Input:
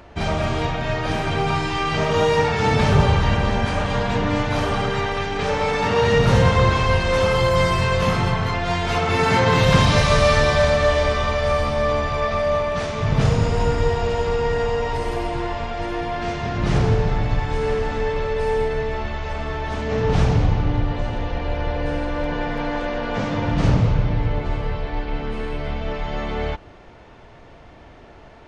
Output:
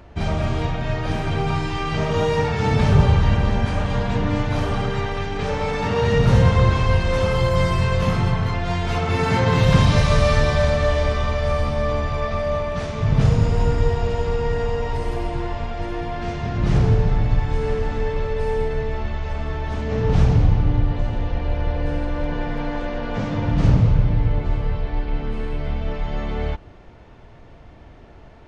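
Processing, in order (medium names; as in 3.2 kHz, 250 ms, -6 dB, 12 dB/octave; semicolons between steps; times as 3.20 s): bass shelf 250 Hz +8 dB; trim -4.5 dB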